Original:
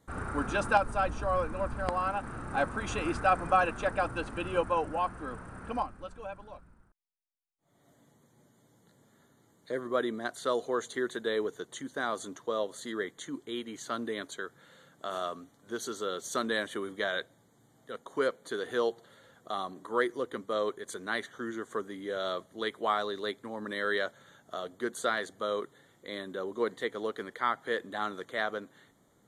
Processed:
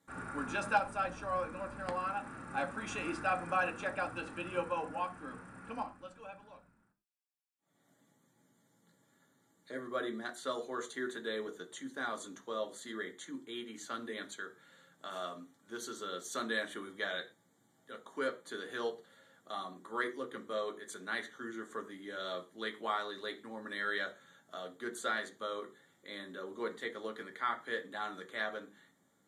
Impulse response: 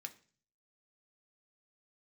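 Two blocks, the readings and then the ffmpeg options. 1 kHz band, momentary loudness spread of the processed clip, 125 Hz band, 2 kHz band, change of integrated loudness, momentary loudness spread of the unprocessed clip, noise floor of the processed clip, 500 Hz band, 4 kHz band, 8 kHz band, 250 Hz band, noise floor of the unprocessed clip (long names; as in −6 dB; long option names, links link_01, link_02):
−6.0 dB, 11 LU, −9.5 dB, −3.5 dB, −6.0 dB, 12 LU, −73 dBFS, −8.0 dB, −4.5 dB, −4.5 dB, −6.0 dB, −66 dBFS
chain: -filter_complex "[1:a]atrim=start_sample=2205,afade=type=out:start_time=0.18:duration=0.01,atrim=end_sample=8379[link_01];[0:a][link_01]afir=irnorm=-1:irlink=0"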